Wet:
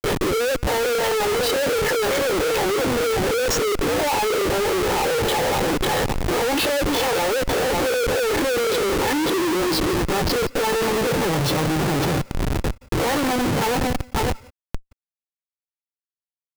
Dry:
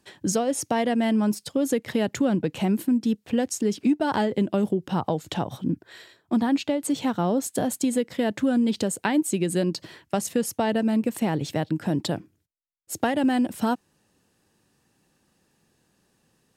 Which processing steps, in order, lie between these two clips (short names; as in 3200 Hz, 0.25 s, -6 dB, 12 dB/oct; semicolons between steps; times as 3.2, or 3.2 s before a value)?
spectral dilation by 60 ms; high shelf 7600 Hz -5.5 dB; comb 2.3 ms, depth 84%; compressor 1.5:1, threshold -32 dBFS, peak gain reduction 7 dB; hard clip -25 dBFS, distortion -11 dB; loudest bins only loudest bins 64; LFO low-pass sine 2.9 Hz 530–5100 Hz; thinning echo 0.547 s, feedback 54%, high-pass 1000 Hz, level -6.5 dB; high-pass sweep 480 Hz -> 140 Hz, 8.05–11.01; Schmitt trigger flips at -35 dBFS; reverb, pre-delay 0.168 s, DRR 22.5 dB; gain +3.5 dB